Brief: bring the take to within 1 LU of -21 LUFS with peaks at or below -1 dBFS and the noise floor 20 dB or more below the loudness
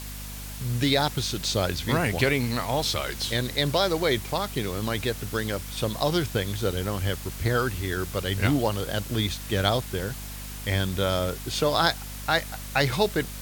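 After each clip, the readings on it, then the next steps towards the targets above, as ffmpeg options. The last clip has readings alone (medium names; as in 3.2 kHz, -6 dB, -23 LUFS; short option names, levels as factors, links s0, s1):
hum 50 Hz; highest harmonic 250 Hz; hum level -36 dBFS; noise floor -37 dBFS; noise floor target -47 dBFS; loudness -26.5 LUFS; peak level -5.0 dBFS; loudness target -21.0 LUFS
-> -af "bandreject=f=50:t=h:w=4,bandreject=f=100:t=h:w=4,bandreject=f=150:t=h:w=4,bandreject=f=200:t=h:w=4,bandreject=f=250:t=h:w=4"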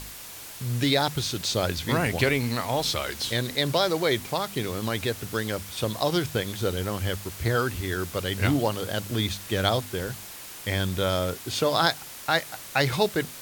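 hum not found; noise floor -41 dBFS; noise floor target -47 dBFS
-> -af "afftdn=nr=6:nf=-41"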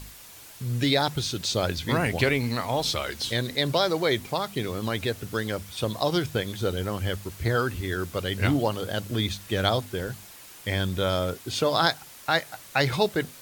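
noise floor -47 dBFS; loudness -27.0 LUFS; peak level -5.0 dBFS; loudness target -21.0 LUFS
-> -af "volume=2,alimiter=limit=0.891:level=0:latency=1"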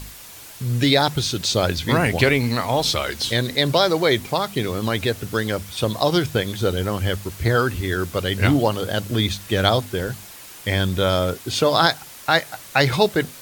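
loudness -21.0 LUFS; peak level -1.0 dBFS; noise floor -41 dBFS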